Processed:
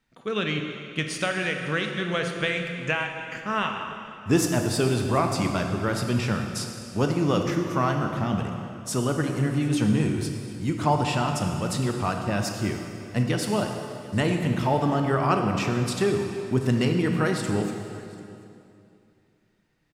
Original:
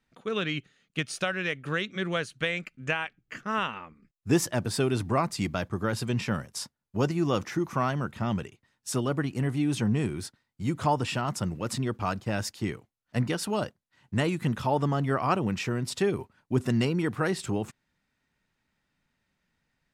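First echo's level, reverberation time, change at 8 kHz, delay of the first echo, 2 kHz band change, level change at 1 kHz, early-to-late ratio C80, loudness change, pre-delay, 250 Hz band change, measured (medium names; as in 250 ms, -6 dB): -22.5 dB, 2.6 s, +3.5 dB, 739 ms, +3.5 dB, +4.0 dB, 5.5 dB, +3.5 dB, 20 ms, +4.0 dB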